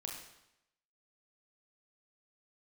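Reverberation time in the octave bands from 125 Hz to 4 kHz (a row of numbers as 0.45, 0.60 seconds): 0.85, 0.85, 0.85, 0.85, 0.85, 0.80 seconds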